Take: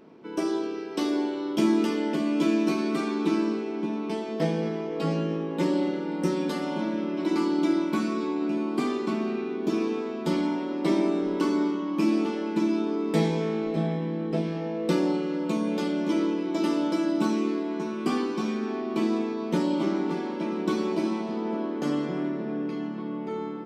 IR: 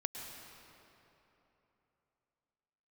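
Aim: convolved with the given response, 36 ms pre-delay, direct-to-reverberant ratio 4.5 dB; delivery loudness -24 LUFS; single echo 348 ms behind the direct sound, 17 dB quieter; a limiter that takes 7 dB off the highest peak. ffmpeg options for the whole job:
-filter_complex "[0:a]alimiter=limit=0.112:level=0:latency=1,aecho=1:1:348:0.141,asplit=2[s0][s1];[1:a]atrim=start_sample=2205,adelay=36[s2];[s1][s2]afir=irnorm=-1:irlink=0,volume=0.562[s3];[s0][s3]amix=inputs=2:normalize=0,volume=1.5"

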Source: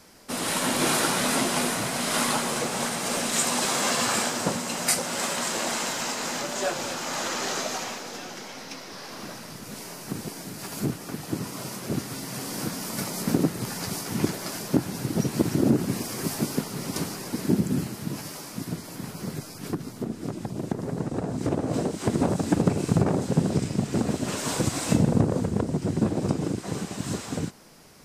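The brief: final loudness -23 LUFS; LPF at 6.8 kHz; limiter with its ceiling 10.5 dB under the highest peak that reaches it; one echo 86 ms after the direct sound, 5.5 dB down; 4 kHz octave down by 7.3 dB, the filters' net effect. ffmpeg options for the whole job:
-af "lowpass=6800,equalizer=f=4000:t=o:g=-9,alimiter=limit=0.15:level=0:latency=1,aecho=1:1:86:0.531,volume=2"

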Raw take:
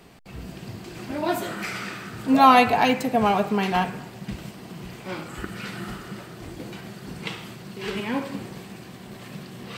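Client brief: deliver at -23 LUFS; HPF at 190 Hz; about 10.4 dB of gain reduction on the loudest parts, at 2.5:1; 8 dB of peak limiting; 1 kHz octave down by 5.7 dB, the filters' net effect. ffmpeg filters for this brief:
-af "highpass=190,equalizer=f=1000:t=o:g=-8,acompressor=threshold=0.0282:ratio=2.5,volume=5.31,alimiter=limit=0.266:level=0:latency=1"

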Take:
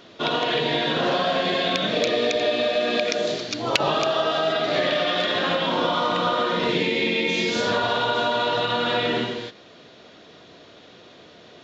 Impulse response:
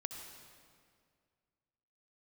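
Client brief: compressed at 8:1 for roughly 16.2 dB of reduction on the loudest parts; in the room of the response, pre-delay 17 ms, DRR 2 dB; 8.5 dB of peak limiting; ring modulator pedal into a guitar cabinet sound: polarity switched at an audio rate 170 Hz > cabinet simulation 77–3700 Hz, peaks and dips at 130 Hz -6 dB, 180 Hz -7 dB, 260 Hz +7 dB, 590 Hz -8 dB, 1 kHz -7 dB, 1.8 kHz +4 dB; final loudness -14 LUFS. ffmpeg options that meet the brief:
-filter_complex "[0:a]acompressor=threshold=0.0251:ratio=8,alimiter=level_in=1.5:limit=0.0631:level=0:latency=1,volume=0.668,asplit=2[s0][s1];[1:a]atrim=start_sample=2205,adelay=17[s2];[s1][s2]afir=irnorm=-1:irlink=0,volume=0.944[s3];[s0][s3]amix=inputs=2:normalize=0,aeval=exprs='val(0)*sgn(sin(2*PI*170*n/s))':c=same,highpass=77,equalizer=f=130:t=q:w=4:g=-6,equalizer=f=180:t=q:w=4:g=-7,equalizer=f=260:t=q:w=4:g=7,equalizer=f=590:t=q:w=4:g=-8,equalizer=f=1000:t=q:w=4:g=-7,equalizer=f=1800:t=q:w=4:g=4,lowpass=f=3700:w=0.5412,lowpass=f=3700:w=1.3066,volume=11.2"

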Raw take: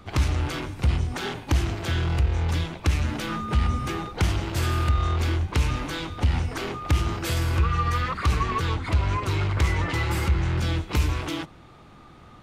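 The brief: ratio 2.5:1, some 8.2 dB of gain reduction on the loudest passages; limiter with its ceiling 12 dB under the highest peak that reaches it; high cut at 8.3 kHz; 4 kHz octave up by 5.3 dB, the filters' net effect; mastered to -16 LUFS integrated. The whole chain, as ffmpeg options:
-af "lowpass=8300,equalizer=f=4000:t=o:g=7,acompressor=threshold=0.0355:ratio=2.5,volume=7.94,alimiter=limit=0.473:level=0:latency=1"

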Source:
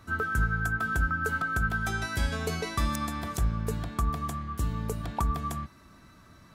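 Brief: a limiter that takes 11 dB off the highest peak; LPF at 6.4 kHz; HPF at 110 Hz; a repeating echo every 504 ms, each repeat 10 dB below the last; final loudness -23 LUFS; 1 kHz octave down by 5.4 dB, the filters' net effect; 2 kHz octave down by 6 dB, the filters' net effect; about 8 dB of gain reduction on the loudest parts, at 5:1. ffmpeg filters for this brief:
-af "highpass=110,lowpass=6400,equalizer=f=1000:t=o:g=-4.5,equalizer=f=2000:t=o:g=-6.5,acompressor=threshold=0.0126:ratio=5,alimiter=level_in=3.98:limit=0.0631:level=0:latency=1,volume=0.251,aecho=1:1:504|1008|1512|2016:0.316|0.101|0.0324|0.0104,volume=12.6"

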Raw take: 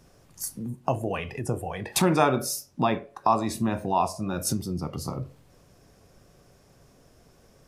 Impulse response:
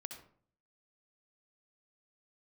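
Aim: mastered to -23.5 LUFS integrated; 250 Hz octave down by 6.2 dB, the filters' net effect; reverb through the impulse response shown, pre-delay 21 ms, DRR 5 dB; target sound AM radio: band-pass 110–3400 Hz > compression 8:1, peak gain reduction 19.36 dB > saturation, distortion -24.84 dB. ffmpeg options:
-filter_complex "[0:a]equalizer=f=250:t=o:g=-8.5,asplit=2[s0][s1];[1:a]atrim=start_sample=2205,adelay=21[s2];[s1][s2]afir=irnorm=-1:irlink=0,volume=0.841[s3];[s0][s3]amix=inputs=2:normalize=0,highpass=110,lowpass=3400,acompressor=threshold=0.0178:ratio=8,asoftclip=threshold=0.075,volume=7.08"

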